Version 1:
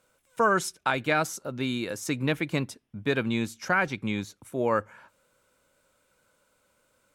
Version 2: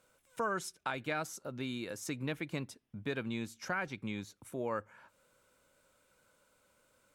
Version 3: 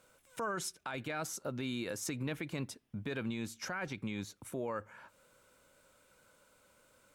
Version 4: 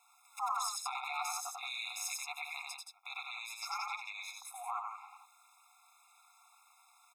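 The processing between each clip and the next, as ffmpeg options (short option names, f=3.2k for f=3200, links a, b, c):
-af "acompressor=threshold=-47dB:ratio=1.5,volume=-2dB"
-af "alimiter=level_in=8.5dB:limit=-24dB:level=0:latency=1:release=30,volume=-8.5dB,volume=4dB"
-af "aecho=1:1:93.29|174.9:0.708|0.501,aeval=exprs='val(0)*sin(2*PI*110*n/s)':c=same,afftfilt=real='re*eq(mod(floor(b*sr/1024/690),2),1)':imag='im*eq(mod(floor(b*sr/1024/690),2),1)':win_size=1024:overlap=0.75,volume=6.5dB"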